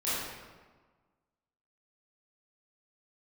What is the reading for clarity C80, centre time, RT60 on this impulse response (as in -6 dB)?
0.0 dB, 108 ms, 1.4 s